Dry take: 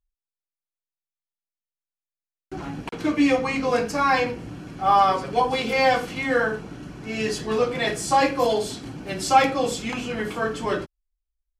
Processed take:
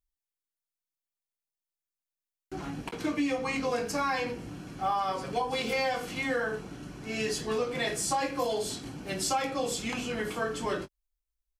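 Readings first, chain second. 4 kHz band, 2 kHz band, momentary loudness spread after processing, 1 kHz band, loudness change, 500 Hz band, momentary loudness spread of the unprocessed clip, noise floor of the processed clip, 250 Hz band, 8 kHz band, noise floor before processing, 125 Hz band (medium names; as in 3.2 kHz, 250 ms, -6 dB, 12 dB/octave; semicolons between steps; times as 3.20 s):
-5.5 dB, -7.5 dB, 10 LU, -10.5 dB, -8.5 dB, -8.0 dB, 15 LU, under -85 dBFS, -8.0 dB, -1.5 dB, under -85 dBFS, -6.5 dB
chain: treble shelf 5.3 kHz +7 dB; doubling 21 ms -12.5 dB; compression 6:1, threshold -21 dBFS, peak gain reduction 10 dB; trim -5 dB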